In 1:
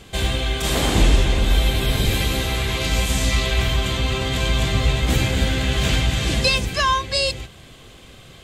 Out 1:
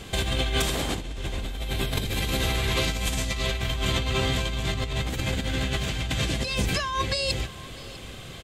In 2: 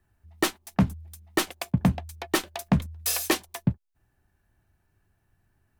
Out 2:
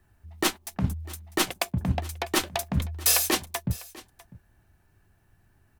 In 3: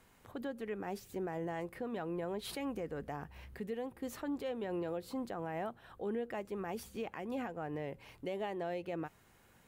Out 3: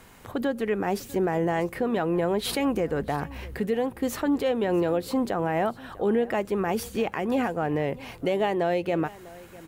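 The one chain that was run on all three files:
compressor with a negative ratio -25 dBFS, ratio -1; delay 649 ms -20.5 dB; normalise loudness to -27 LUFS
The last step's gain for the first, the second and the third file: -2.0 dB, +3.0 dB, +14.0 dB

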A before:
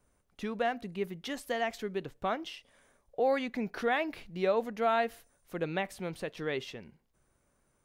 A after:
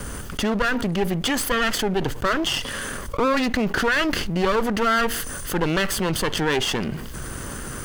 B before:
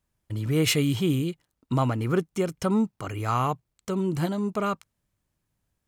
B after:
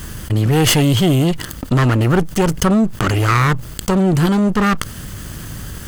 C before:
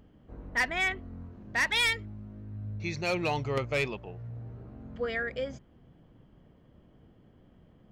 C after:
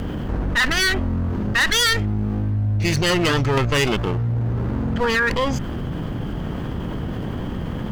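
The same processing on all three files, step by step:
comb filter that takes the minimum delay 0.64 ms; level flattener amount 70%; trim +9 dB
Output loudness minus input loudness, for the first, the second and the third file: +10.5 LU, +11.0 LU, +9.5 LU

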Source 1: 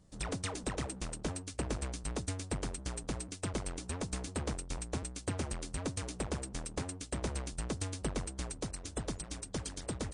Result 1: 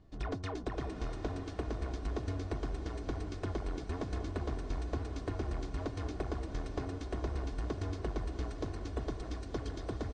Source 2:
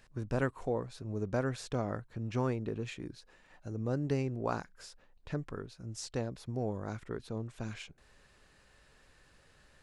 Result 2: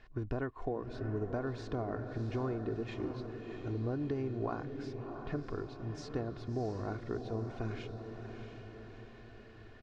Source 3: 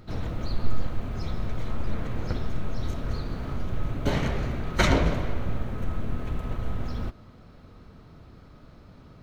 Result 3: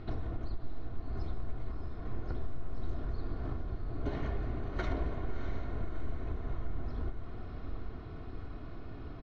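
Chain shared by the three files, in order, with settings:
comb 2.8 ms, depth 50%; dynamic bell 2.6 kHz, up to -6 dB, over -57 dBFS, Q 1.5; compression 6:1, threshold -35 dBFS; distance through air 230 m; echo that smears into a reverb 668 ms, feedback 54%, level -7 dB; trim +3 dB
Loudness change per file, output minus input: 0.0 LU, -2.0 LU, -10.5 LU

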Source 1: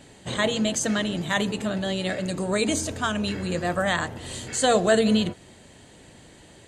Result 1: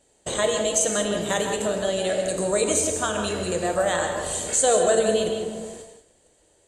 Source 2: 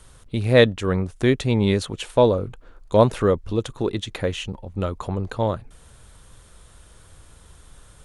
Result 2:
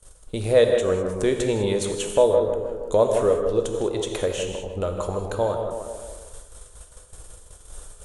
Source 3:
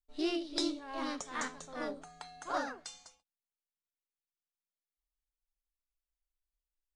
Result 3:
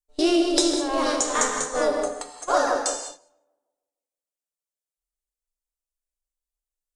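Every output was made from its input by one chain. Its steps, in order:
graphic EQ 125/250/500/1000/2000/4000/8000 Hz -11/-8/+5/-3/-6/-4/+7 dB; on a send: tape echo 156 ms, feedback 54%, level -7 dB, low-pass 1.4 kHz; on the sum: dynamic bell 4.8 kHz, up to -5 dB, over -51 dBFS, Q 4.8; gate -46 dBFS, range -20 dB; compression 1.5:1, threshold -39 dBFS; gated-style reverb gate 230 ms flat, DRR 4.5 dB; normalise loudness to -23 LUFS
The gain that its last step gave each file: +8.0 dB, +6.5 dB, +17.5 dB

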